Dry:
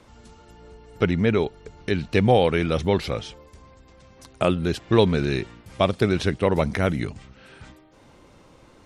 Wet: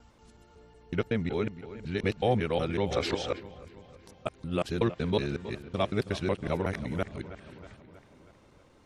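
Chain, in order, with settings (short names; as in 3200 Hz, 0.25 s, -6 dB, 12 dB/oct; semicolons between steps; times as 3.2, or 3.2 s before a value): local time reversal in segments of 0.185 s; dark delay 0.32 s, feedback 57%, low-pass 3200 Hz, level -14 dB; spectral gain 2.91–3.4, 240–8600 Hz +8 dB; gain -8.5 dB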